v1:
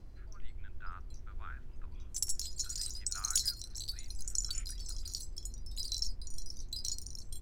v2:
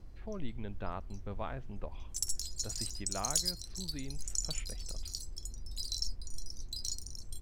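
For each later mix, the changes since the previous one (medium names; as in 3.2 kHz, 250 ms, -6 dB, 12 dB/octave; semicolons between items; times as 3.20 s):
speech: remove ladder high-pass 1.3 kHz, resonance 70%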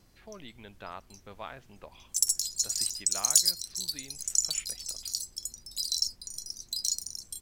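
background: add peaking EQ 170 Hz +6.5 dB 1.1 oct; master: add tilt EQ +3.5 dB/octave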